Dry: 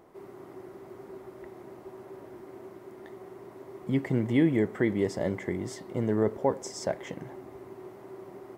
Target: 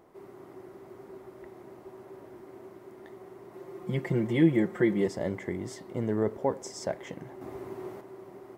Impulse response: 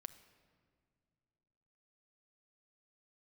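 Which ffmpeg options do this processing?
-filter_complex "[0:a]asettb=1/sr,asplit=3[a][b][c];[a]atrim=end=3.534[d];[b]atrim=start=3.53:end=5.08,asetpts=PTS-STARTPTS,afade=t=in:d=0.004:c=qsin,afade=t=out:st=1.546:d=0.004:c=qsin,aecho=1:1:5.7:0.86,atrim=end_sample=68355[e];[c]atrim=start=5.076[f];[d][e]acrossfade=d=0.004:c1=hsin:c2=qsin[g];[g][f]acrossfade=d=0.004:c1=qsin:c2=hsin,asettb=1/sr,asplit=3[h][i][j];[h]atrim=end=7.414[k];[i]atrim=start=7.41:end=8.01,asetpts=PTS-STARTPTS,afade=t=in:d=0.004:c=qsin,afade=t=out:st=0.596:d=0.004:c=qsin,acontrast=78[l];[j]atrim=start=8.006[m];[k][l]acrossfade=d=0.004:c1=hsin:c2=qsin[n];[n][m]acrossfade=d=0.004:c1=qsin:c2=hsin,volume=-2dB"

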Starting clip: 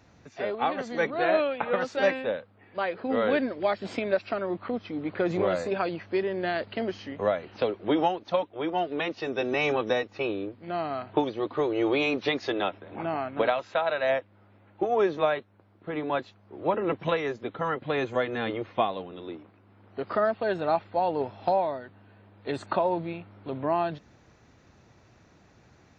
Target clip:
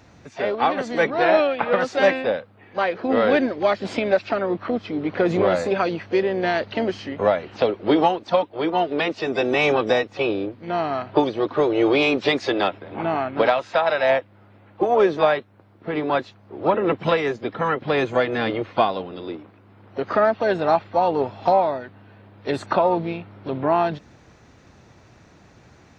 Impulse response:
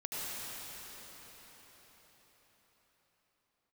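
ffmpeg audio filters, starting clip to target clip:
-filter_complex "[0:a]asplit=2[a][b];[b]asetrate=58866,aresample=44100,atempo=0.749154,volume=-14dB[c];[a][c]amix=inputs=2:normalize=0,acontrast=77"

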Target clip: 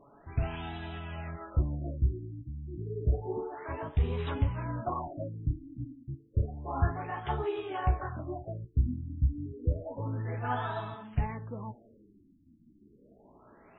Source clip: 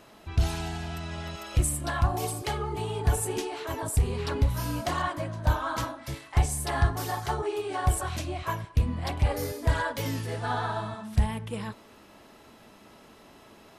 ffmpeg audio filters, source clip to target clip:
-af "flanger=delay=7:depth=9.8:regen=37:speed=0.18:shape=sinusoidal,afftfilt=real='re*lt(b*sr/1024,320*pow(4000/320,0.5+0.5*sin(2*PI*0.3*pts/sr)))':imag='im*lt(b*sr/1024,320*pow(4000/320,0.5+0.5*sin(2*PI*0.3*pts/sr)))':win_size=1024:overlap=0.75"

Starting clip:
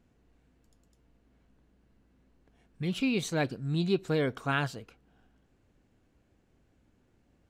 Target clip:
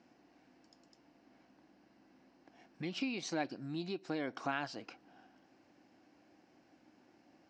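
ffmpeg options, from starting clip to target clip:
-af "acompressor=threshold=-39dB:ratio=10,highpass=300,equalizer=f=310:t=q:w=4:g=6,equalizer=f=440:t=q:w=4:g=-9,equalizer=f=770:t=q:w=4:g=5,equalizer=f=1.3k:t=q:w=4:g=-3,equalizer=f=3.5k:t=q:w=4:g=-6,equalizer=f=5.2k:t=q:w=4:g=7,lowpass=f=5.8k:w=0.5412,lowpass=f=5.8k:w=1.3066,volume=7dB"

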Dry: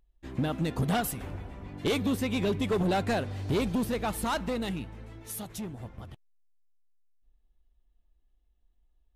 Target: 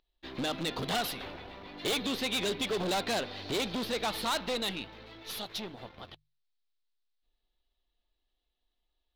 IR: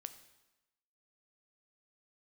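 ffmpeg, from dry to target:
-filter_complex "[0:a]bass=f=250:g=-14,treble=f=4k:g=7,asplit=2[a][b];[b]acrusher=bits=6:dc=4:mix=0:aa=0.000001,volume=-5dB[c];[a][c]amix=inputs=2:normalize=0,highshelf=f=5.7k:t=q:w=3:g=-13.5,volume=26dB,asoftclip=hard,volume=-26dB,bandreject=f=50:t=h:w=6,bandreject=f=100:t=h:w=6,bandreject=f=150:t=h:w=6,asoftclip=type=tanh:threshold=-23.5dB"

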